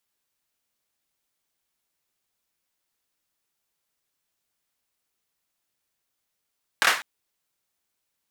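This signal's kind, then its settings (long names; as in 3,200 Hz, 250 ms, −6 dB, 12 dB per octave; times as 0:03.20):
synth clap length 0.20 s, bursts 3, apart 25 ms, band 1,500 Hz, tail 0.36 s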